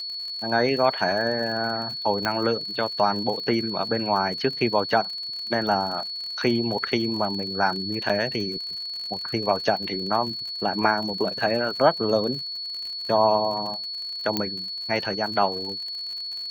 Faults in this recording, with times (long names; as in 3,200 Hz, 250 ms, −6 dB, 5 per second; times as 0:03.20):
surface crackle 56 per second −32 dBFS
whistle 4,400 Hz −30 dBFS
0:02.25: click −10 dBFS
0:08.09–0:08.10: drop-out 6.2 ms
0:14.37: click −9 dBFS